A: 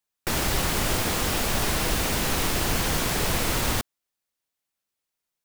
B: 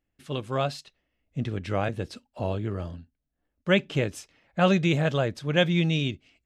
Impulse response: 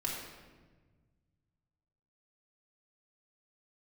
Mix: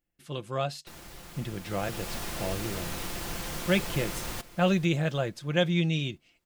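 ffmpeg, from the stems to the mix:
-filter_complex "[0:a]adelay=600,volume=-11.5dB,afade=t=in:st=1.61:d=0.53:silence=0.281838,asplit=2[a][b];[b]volume=-17dB[c];[1:a]highshelf=f=7k:g=8,volume=-5dB[d];[c]aecho=0:1:442|884|1326|1768|2210|2652:1|0.45|0.202|0.0911|0.041|0.0185[e];[a][d][e]amix=inputs=3:normalize=0,aecho=1:1:5.8:0.36"

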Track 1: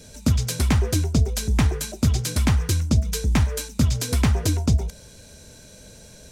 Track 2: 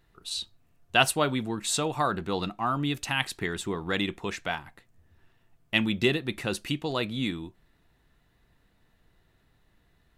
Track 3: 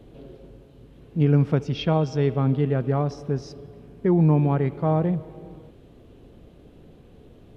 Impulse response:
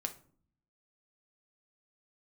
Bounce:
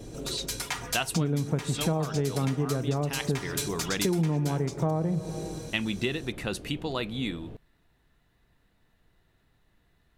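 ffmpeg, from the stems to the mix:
-filter_complex "[0:a]highpass=f=780:w=0.5412,highpass=f=780:w=1.3066,aecho=1:1:4.2:0.85,dynaudnorm=f=210:g=7:m=7.5dB,volume=-9dB[a];[1:a]volume=-1.5dB[b];[2:a]highshelf=f=4.3k:g=-10,volume=2dB,asplit=2[c][d];[d]volume=-5dB[e];[3:a]atrim=start_sample=2205[f];[e][f]afir=irnorm=-1:irlink=0[g];[a][b][c][g]amix=inputs=4:normalize=0,acompressor=threshold=-24dB:ratio=8"

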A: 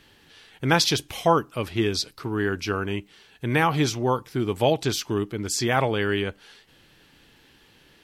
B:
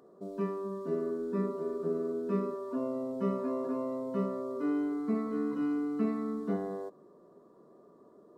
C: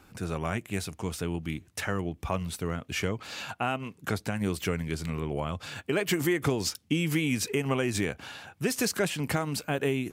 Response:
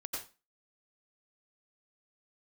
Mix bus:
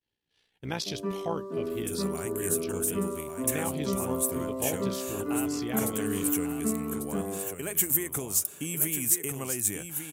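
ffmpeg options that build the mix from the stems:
-filter_complex "[0:a]agate=range=-33dB:threshold=-44dB:ratio=3:detection=peak,equalizer=f=1.3k:w=1.5:g=-6.5,tremolo=f=61:d=0.621,volume=-9.5dB[a];[1:a]adelay=650,volume=0.5dB[b];[2:a]aexciter=amount=7.2:drive=9.7:freq=7k,adelay=1700,volume=-9dB,asplit=2[c][d];[d]volume=-7.5dB,aecho=0:1:1145:1[e];[a][b][c][e]amix=inputs=4:normalize=0"

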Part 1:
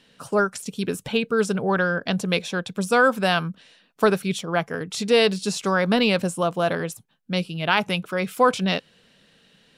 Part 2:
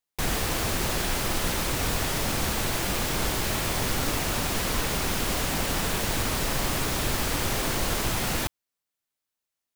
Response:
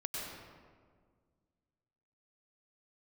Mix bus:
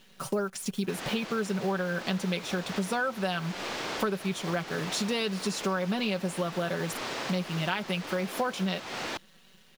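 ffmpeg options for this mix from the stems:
-filter_complex "[0:a]acrusher=bits=8:dc=4:mix=0:aa=0.000001,bandreject=f=8k:w=14,aecho=1:1:5.3:0.58,volume=1dB[a];[1:a]highpass=110,acrossover=split=270 6000:gain=0.224 1 0.0794[b][c][d];[b][c][d]amix=inputs=3:normalize=0,adelay=700,volume=-3dB[e];[a][e]amix=inputs=2:normalize=0,acompressor=threshold=-28dB:ratio=5"

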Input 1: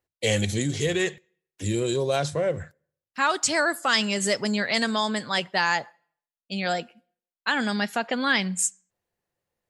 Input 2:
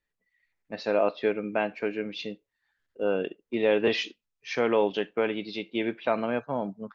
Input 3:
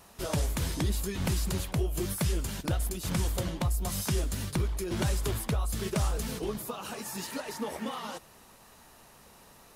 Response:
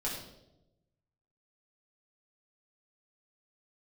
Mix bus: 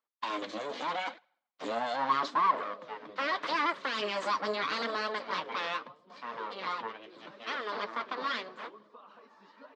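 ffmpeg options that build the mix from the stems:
-filter_complex "[0:a]equalizer=f=370:t=o:w=1.5:g=8.5,afade=t=out:st=4.61:d=0.78:silence=0.354813[a];[1:a]adelay=1650,volume=-12dB,asplit=2[b][c];[c]volume=-14dB[d];[2:a]lowpass=f=1.5k:p=1,adelay=2250,volume=-13.5dB,asplit=2[e][f];[f]volume=-15.5dB[g];[a][b]amix=inputs=2:normalize=0,aeval=exprs='abs(val(0))':c=same,alimiter=limit=-16.5dB:level=0:latency=1:release=42,volume=0dB[h];[3:a]atrim=start_sample=2205[i];[d][g]amix=inputs=2:normalize=0[j];[j][i]afir=irnorm=-1:irlink=0[k];[e][h][k]amix=inputs=3:normalize=0,dynaudnorm=f=140:g=17:m=4dB,flanger=delay=1.4:depth=9:regen=45:speed=0.79:shape=triangular,highpass=f=280:w=0.5412,highpass=f=280:w=1.3066,equalizer=f=370:t=q:w=4:g=-9,equalizer=f=780:t=q:w=4:g=-6,equalizer=f=1.1k:t=q:w=4:g=8,equalizer=f=2.6k:t=q:w=4:g=-5,lowpass=f=4.4k:w=0.5412,lowpass=f=4.4k:w=1.3066"

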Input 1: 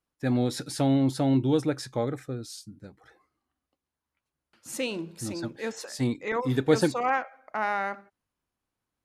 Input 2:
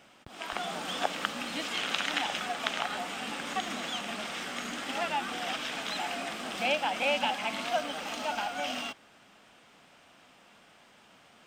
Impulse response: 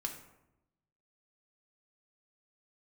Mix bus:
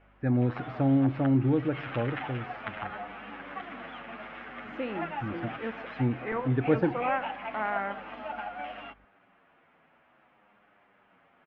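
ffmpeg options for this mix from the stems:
-filter_complex "[0:a]lowshelf=f=160:g=11.5,aeval=exprs='val(0)+0.00178*(sin(2*PI*50*n/s)+sin(2*PI*2*50*n/s)/2+sin(2*PI*3*50*n/s)/3+sin(2*PI*4*50*n/s)/4+sin(2*PI*5*50*n/s)/5)':c=same,volume=-5dB,asplit=3[a][b][c];[b]volume=-10dB[d];[1:a]asplit=2[e][f];[f]adelay=8.4,afreqshift=-0.53[g];[e][g]amix=inputs=2:normalize=1,volume=0dB[h];[c]apad=whole_len=505861[i];[h][i]sidechaincompress=threshold=-29dB:ratio=8:attack=48:release=196[j];[2:a]atrim=start_sample=2205[k];[d][k]afir=irnorm=-1:irlink=0[l];[a][j][l]amix=inputs=3:normalize=0,lowpass=f=2.2k:w=0.5412,lowpass=f=2.2k:w=1.3066,lowshelf=f=400:g=-3"

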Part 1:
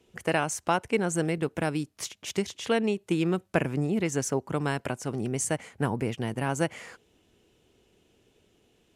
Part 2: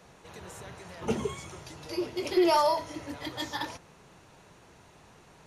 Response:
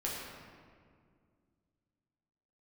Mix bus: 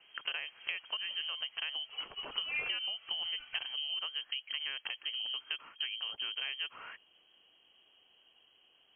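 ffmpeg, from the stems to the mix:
-filter_complex "[0:a]acrossover=split=2800[a][b];[b]acompressor=threshold=-42dB:ratio=4:attack=1:release=60[c];[a][c]amix=inputs=2:normalize=0,bandreject=f=360:w=12,acompressor=threshold=-34dB:ratio=10,volume=-0.5dB,asplit=2[d][e];[1:a]volume=-8.5dB[f];[e]apad=whole_len=241202[g];[f][g]sidechaincompress=threshold=-48dB:ratio=8:attack=36:release=202[h];[d][h]amix=inputs=2:normalize=0,lowpass=f=2.8k:t=q:w=0.5098,lowpass=f=2.8k:t=q:w=0.6013,lowpass=f=2.8k:t=q:w=0.9,lowpass=f=2.8k:t=q:w=2.563,afreqshift=-3300"

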